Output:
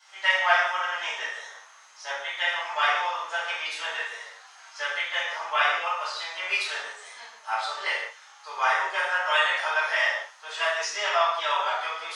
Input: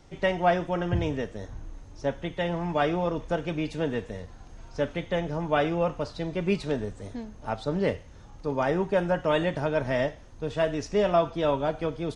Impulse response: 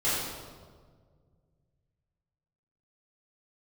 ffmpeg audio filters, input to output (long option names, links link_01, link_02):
-filter_complex "[0:a]highpass=frequency=1100:width=0.5412,highpass=frequency=1100:width=1.3066[link_01];[1:a]atrim=start_sample=2205,afade=type=out:start_time=0.37:duration=0.01,atrim=end_sample=16758,asetrate=66150,aresample=44100[link_02];[link_01][link_02]afir=irnorm=-1:irlink=0,volume=4dB"